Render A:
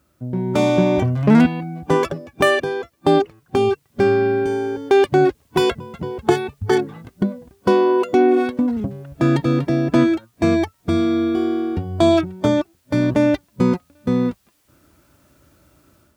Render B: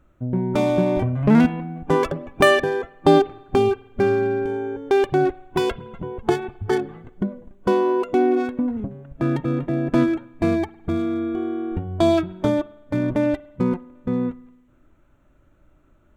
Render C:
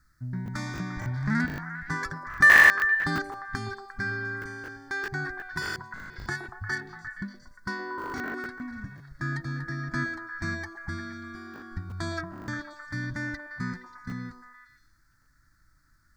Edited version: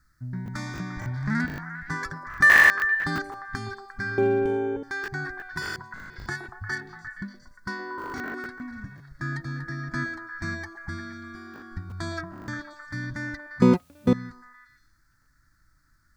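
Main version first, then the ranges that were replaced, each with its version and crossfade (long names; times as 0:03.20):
C
0:04.18–0:04.83: punch in from B
0:13.62–0:14.13: punch in from A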